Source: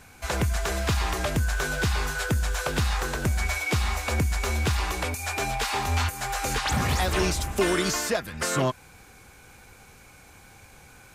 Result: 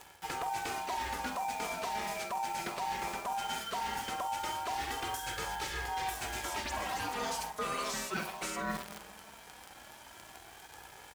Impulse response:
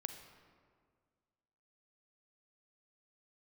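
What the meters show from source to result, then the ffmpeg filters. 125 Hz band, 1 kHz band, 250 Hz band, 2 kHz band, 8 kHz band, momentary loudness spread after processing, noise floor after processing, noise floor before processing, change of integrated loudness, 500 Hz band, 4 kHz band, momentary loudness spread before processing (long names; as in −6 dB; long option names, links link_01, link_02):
−23.5 dB, −3.0 dB, −13.5 dB, −10.0 dB, −10.0 dB, 15 LU, −54 dBFS, −51 dBFS, −10.0 dB, −12.0 dB, −9.0 dB, 4 LU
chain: -filter_complex "[0:a]aeval=exprs='val(0)*sin(2*PI*850*n/s)':channel_layout=same,aecho=1:1:47|66:0.282|0.188,asplit=2[link_01][link_02];[1:a]atrim=start_sample=2205[link_03];[link_02][link_03]afir=irnorm=-1:irlink=0,volume=-8dB[link_04];[link_01][link_04]amix=inputs=2:normalize=0,aresample=32000,aresample=44100,flanger=delay=2.3:depth=3:regen=-23:speed=0.18:shape=sinusoidal,acrusher=bits=8:dc=4:mix=0:aa=0.000001,areverse,acompressor=threshold=-42dB:ratio=4,areverse,highpass=45,volume=6dB"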